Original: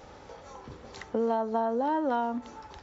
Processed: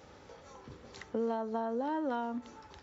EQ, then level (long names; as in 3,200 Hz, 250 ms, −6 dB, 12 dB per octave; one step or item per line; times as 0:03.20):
high-pass filter 57 Hz
parametric band 790 Hz −4.5 dB 1 octave
−4.0 dB